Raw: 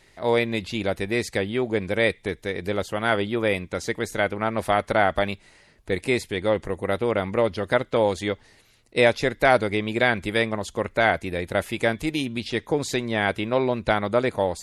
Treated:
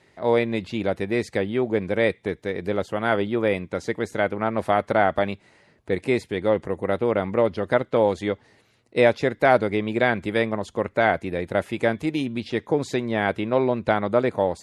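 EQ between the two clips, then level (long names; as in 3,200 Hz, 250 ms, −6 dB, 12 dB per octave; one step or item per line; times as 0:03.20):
high-pass filter 100 Hz
low-pass filter 11,000 Hz
high-shelf EQ 2,200 Hz −10 dB
+2.0 dB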